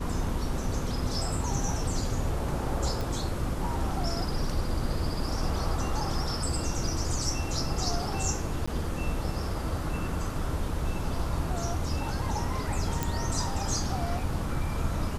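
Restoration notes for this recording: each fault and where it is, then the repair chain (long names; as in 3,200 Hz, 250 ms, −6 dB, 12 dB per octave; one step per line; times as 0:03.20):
0:03.01: click
0:08.66–0:08.68: drop-out 15 ms
0:13.03: click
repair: click removal
repair the gap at 0:08.66, 15 ms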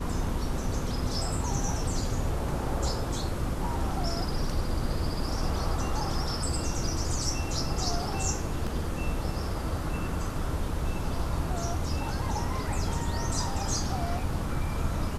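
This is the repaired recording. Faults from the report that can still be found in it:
none of them is left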